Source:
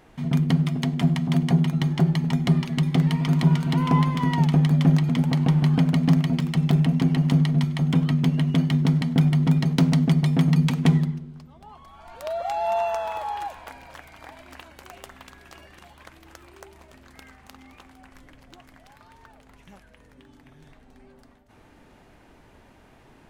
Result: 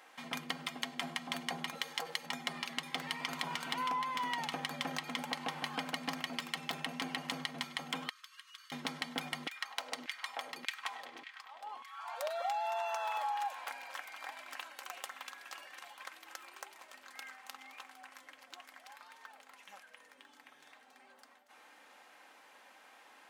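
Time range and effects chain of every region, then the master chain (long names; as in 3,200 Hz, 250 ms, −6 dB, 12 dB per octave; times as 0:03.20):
0:01.75–0:02.26: spectral tilt +2.5 dB per octave + saturating transformer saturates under 1,100 Hz
0:08.09–0:08.72: Chebyshev high-pass with heavy ripple 1,100 Hz, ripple 3 dB + parametric band 2,200 Hz −8 dB 1.8 octaves + downward compressor 3 to 1, threshold −51 dBFS
0:09.47–0:12.30: delay with a low-pass on its return 101 ms, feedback 75%, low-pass 3,500 Hz, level −15.5 dB + downward compressor 2.5 to 1, threshold −28 dBFS + auto-filter high-pass saw down 1.7 Hz 270–2,300 Hz
whole clip: high-pass filter 850 Hz 12 dB per octave; comb filter 3.8 ms, depth 43%; downward compressor, threshold −33 dBFS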